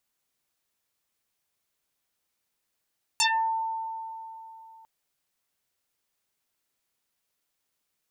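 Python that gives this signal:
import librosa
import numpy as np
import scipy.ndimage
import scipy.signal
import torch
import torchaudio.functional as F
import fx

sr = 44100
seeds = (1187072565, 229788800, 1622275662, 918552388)

y = fx.fm2(sr, length_s=1.65, level_db=-19.0, carrier_hz=896.0, ratio=1.0, index=11.0, index_s=0.33, decay_s=3.26, shape='exponential')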